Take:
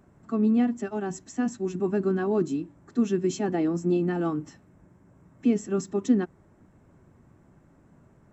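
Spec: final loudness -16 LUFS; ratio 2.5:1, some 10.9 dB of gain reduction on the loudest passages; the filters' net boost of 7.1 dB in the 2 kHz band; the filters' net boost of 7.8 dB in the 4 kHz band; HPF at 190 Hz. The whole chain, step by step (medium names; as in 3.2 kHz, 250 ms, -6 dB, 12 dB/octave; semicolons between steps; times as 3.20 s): high-pass 190 Hz; peaking EQ 2 kHz +7.5 dB; peaking EQ 4 kHz +8 dB; compression 2.5:1, threshold -35 dBFS; trim +20 dB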